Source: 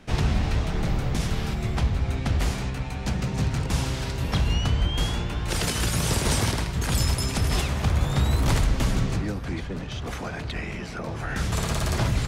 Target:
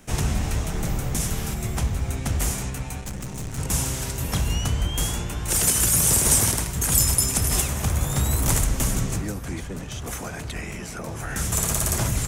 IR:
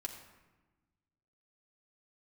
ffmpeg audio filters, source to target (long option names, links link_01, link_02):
-filter_complex "[0:a]aexciter=amount=7.5:drive=1.8:freq=6200,asplit=3[link_01][link_02][link_03];[link_01]afade=type=out:start_time=3:duration=0.02[link_04];[link_02]aeval=exprs='(tanh(25.1*val(0)+0.65)-tanh(0.65))/25.1':channel_layout=same,afade=type=in:start_time=3:duration=0.02,afade=type=out:start_time=3.57:duration=0.02[link_05];[link_03]afade=type=in:start_time=3.57:duration=0.02[link_06];[link_04][link_05][link_06]amix=inputs=3:normalize=0,volume=-1dB"